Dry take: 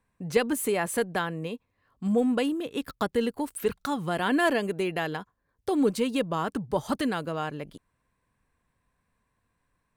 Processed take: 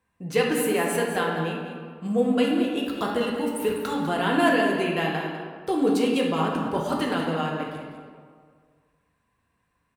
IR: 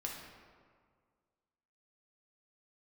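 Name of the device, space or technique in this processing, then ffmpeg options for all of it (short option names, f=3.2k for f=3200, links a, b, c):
PA in a hall: -filter_complex "[0:a]highpass=f=100:p=1,equalizer=f=2.8k:t=o:w=0.3:g=4.5,aecho=1:1:199:0.316[a];[1:a]atrim=start_sample=2205[b];[a][b]afir=irnorm=-1:irlink=0,volume=3dB"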